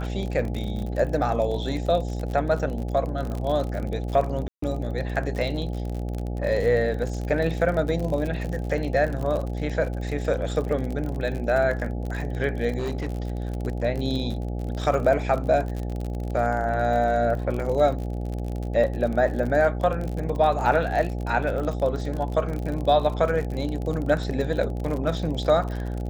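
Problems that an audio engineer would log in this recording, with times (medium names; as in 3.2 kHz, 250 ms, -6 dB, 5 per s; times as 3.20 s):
buzz 60 Hz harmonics 14 -29 dBFS
crackle 47 per s -29 dBFS
4.48–4.62 s: dropout 144 ms
12.78–13.63 s: clipped -23.5 dBFS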